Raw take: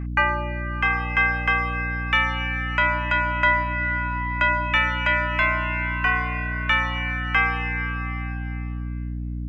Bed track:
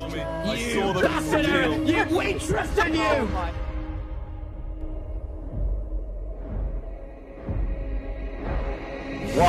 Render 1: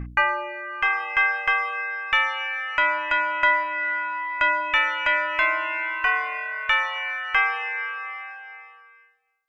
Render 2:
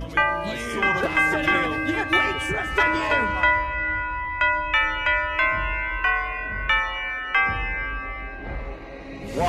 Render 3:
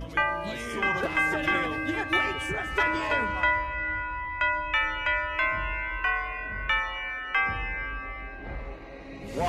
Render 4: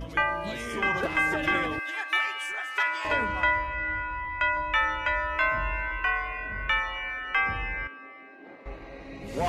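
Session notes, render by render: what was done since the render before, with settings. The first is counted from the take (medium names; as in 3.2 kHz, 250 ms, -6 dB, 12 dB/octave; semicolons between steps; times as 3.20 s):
de-hum 60 Hz, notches 8
add bed track -4.5 dB
trim -5 dB
1.79–3.05 s: high-pass 1 kHz; 4.55–5.92 s: doubling 17 ms -4 dB; 7.87–8.66 s: ladder high-pass 230 Hz, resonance 40%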